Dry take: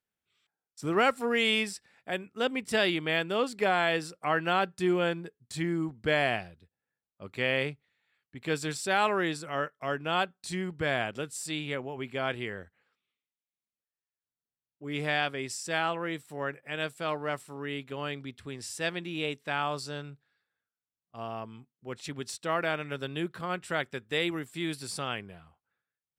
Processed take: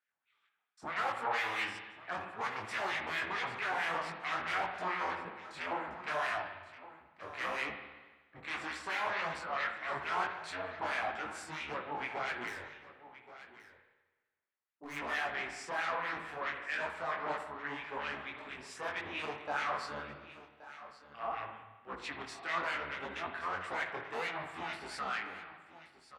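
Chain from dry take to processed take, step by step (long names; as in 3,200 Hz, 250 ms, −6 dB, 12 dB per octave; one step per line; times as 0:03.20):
sub-octave generator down 1 octave, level +4 dB
0:03.72–0:04.25: parametric band 170 Hz +11 dB 0.99 octaves
in parallel at −7 dB: sine wavefolder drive 18 dB, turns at −11.5 dBFS
on the sum: auto-filter band-pass sine 4.5 Hz 870–2,100 Hz
0:12.47–0:14.97: hard clipping −34 dBFS, distortion −24 dB
on a send: single-tap delay 1,125 ms −15.5 dB
on the sum: spring reverb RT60 1.3 s, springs 55 ms, chirp 25 ms, DRR 6 dB
micro pitch shift up and down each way 59 cents
level −4 dB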